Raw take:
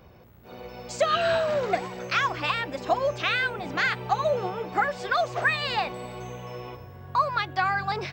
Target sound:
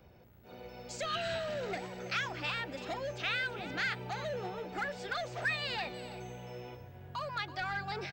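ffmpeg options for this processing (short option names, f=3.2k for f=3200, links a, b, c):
-filter_complex "[0:a]bandreject=f=1.1k:w=6.1,acrossover=split=300|1700|2800[a][b][c][d];[b]asoftclip=type=tanh:threshold=-30dB[e];[a][e][c][d]amix=inputs=4:normalize=0,aecho=1:1:329:0.188,volume=-7dB"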